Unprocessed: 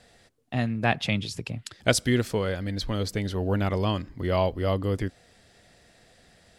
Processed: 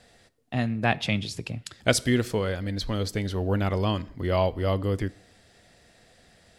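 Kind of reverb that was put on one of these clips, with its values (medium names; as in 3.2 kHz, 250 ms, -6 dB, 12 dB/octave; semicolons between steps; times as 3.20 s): plate-style reverb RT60 0.63 s, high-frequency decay 0.8×, DRR 18 dB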